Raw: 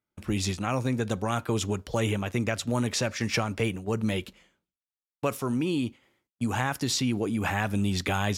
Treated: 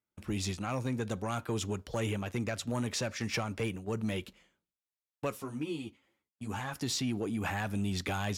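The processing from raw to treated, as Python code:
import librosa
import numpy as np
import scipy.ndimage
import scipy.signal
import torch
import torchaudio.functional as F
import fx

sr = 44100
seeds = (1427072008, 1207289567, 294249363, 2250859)

y = fx.cheby_harmonics(x, sr, harmonics=(5,), levels_db=(-19,), full_scale_db=-10.5)
y = fx.ensemble(y, sr, at=(5.3, 6.75), fade=0.02)
y = F.gain(torch.from_numpy(y), -9.0).numpy()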